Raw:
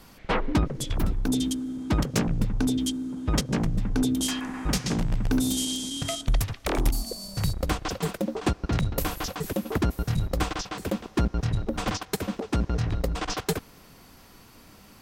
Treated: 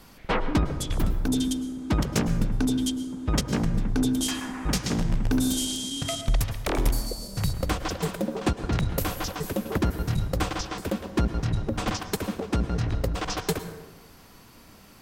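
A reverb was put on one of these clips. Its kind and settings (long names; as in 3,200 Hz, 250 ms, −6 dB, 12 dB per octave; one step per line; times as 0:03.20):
dense smooth reverb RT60 1.1 s, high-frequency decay 0.5×, pre-delay 95 ms, DRR 10.5 dB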